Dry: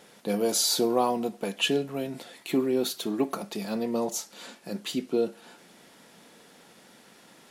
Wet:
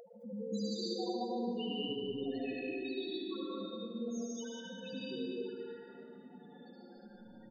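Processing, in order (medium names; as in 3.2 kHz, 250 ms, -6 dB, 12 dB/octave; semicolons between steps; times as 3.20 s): compression 16:1, threshold -39 dBFS, peak gain reduction 21 dB; word length cut 8-bit, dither none; loudest bins only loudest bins 1; peaking EQ 110 Hz +8 dB 0.75 oct; peak limiter -50 dBFS, peak gain reduction 10 dB; 2.56–4.88 s: tone controls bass -11 dB, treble -1 dB; loudspeakers at several distances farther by 25 m -4 dB, 77 m -11 dB; reverberation RT60 2.3 s, pre-delay 80 ms, DRR -7 dB; upward compressor, threshold -56 dBFS; trim +9 dB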